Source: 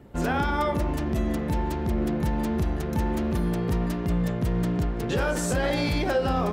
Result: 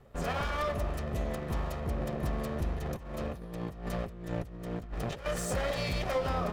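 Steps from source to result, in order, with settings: comb filter that takes the minimum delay 1.6 ms; 2.76–5.26 s: compressor with a negative ratio -31 dBFS, ratio -0.5; trim -5.5 dB

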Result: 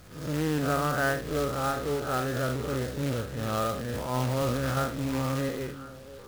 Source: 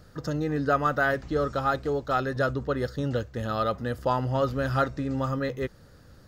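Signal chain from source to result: spectral blur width 125 ms; companded quantiser 4-bit; repeats whose band climbs or falls 346 ms, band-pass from 180 Hz, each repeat 1.4 oct, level -9 dB; 3.74–4.77 s: transient shaper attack -11 dB, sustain +8 dB

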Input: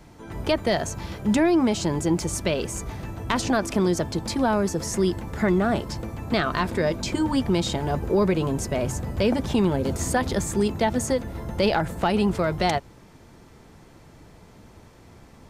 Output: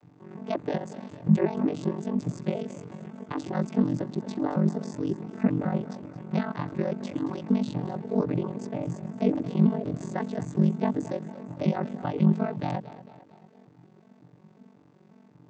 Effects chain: vocoder on a broken chord major triad, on D3, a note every 182 ms; two-band feedback delay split 340 Hz, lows 138 ms, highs 225 ms, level -15 dB; ring modulator 23 Hz

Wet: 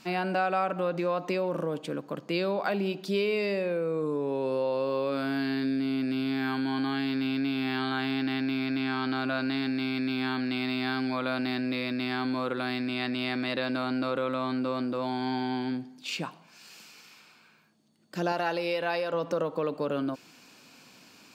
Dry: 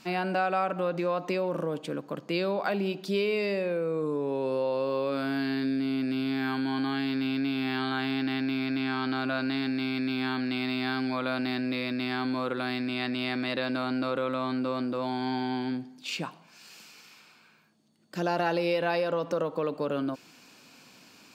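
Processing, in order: 18.32–19.14 s: bass shelf 370 Hz -8 dB

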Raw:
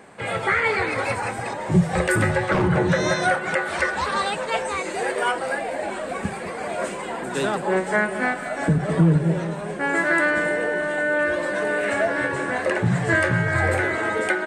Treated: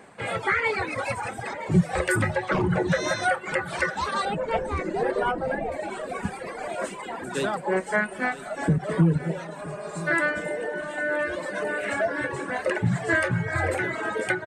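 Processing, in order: reverb removal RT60 1.5 s; 4.25–5.72 s: tilt EQ -4.5 dB/octave; 9.69–10.05 s: spectral replace 210–3500 Hz before; delay 971 ms -16 dB; trim -2 dB

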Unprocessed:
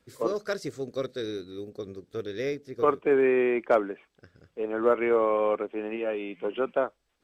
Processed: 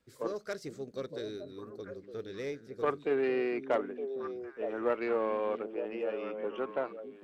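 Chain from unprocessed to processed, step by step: self-modulated delay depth 0.1 ms; repeats whose band climbs or falls 457 ms, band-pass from 190 Hz, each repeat 1.4 oct, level -4 dB; trim -7.5 dB

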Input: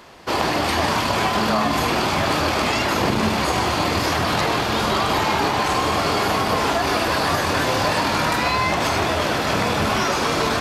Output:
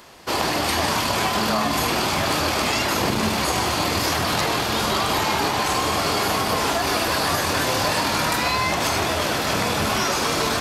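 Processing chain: treble shelf 5.4 kHz +10 dB; trim -2.5 dB

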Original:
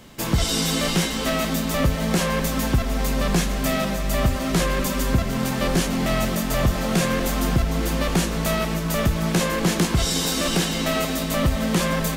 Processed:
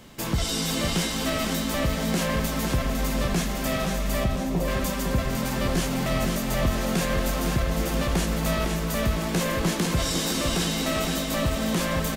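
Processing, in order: 4.24–4.68 s: steep low-pass 960 Hz 48 dB/octave; in parallel at -2 dB: peak limiter -21 dBFS, peak gain reduction 11.5 dB; on the sum: feedback delay 506 ms, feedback 52%, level -6 dB; trim -7 dB

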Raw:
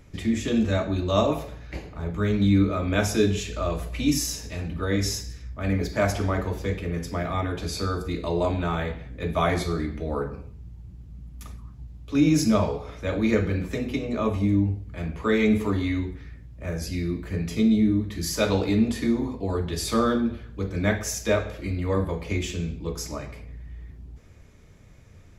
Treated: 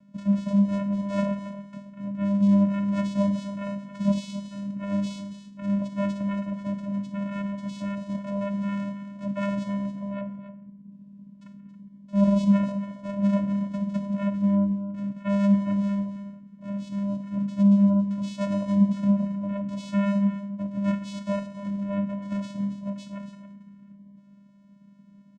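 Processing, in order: vocoder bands 4, square 200 Hz; 10.21–10.92 s: distance through air 350 m; delay 276 ms -12 dB

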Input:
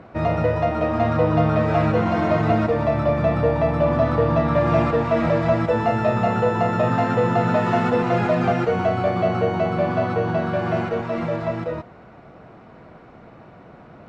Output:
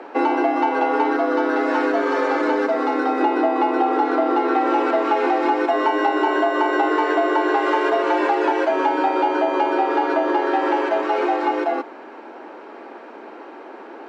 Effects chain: 1.16–3.21 s: fifteen-band graphic EQ 160 Hz -11 dB, 630 Hz -9 dB, 2.5 kHz -7 dB; compression, threshold -22 dBFS, peak gain reduction 8.5 dB; frequency shift +190 Hz; trim +6.5 dB

